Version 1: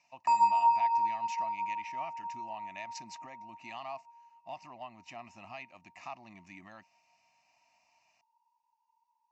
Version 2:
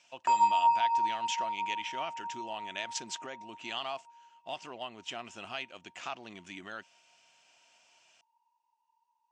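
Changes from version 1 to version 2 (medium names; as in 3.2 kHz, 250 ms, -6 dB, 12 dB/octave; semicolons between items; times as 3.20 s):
speech: add treble shelf 2.6 kHz +9.5 dB; master: remove static phaser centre 2.2 kHz, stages 8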